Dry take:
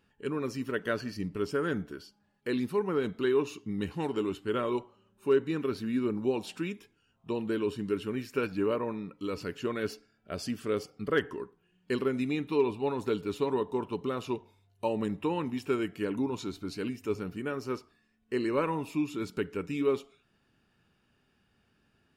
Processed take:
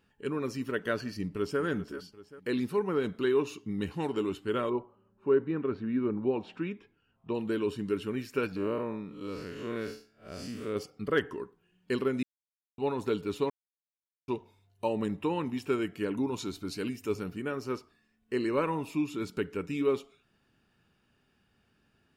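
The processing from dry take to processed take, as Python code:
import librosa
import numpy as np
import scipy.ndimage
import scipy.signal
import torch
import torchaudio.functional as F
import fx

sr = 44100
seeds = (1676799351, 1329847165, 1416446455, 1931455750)

y = fx.echo_throw(x, sr, start_s=1.2, length_s=0.41, ms=390, feedback_pct=50, wet_db=-13.5)
y = fx.lowpass(y, sr, hz=fx.line((4.69, 1300.0), (7.33, 2900.0)), slope=12, at=(4.69, 7.33), fade=0.02)
y = fx.spec_blur(y, sr, span_ms=143.0, at=(8.56, 10.76))
y = fx.high_shelf(y, sr, hz=4800.0, db=6.0, at=(16.27, 17.31))
y = fx.edit(y, sr, fx.silence(start_s=12.23, length_s=0.55),
    fx.silence(start_s=13.5, length_s=0.78), tone=tone)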